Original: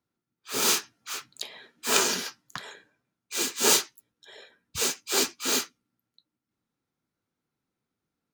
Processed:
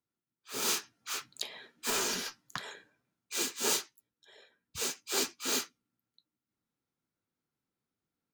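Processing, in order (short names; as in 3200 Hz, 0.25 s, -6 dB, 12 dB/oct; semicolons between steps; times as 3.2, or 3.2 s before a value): 1.9–2.43 tube stage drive 24 dB, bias 0.25; vocal rider within 4 dB 0.5 s; gain -5.5 dB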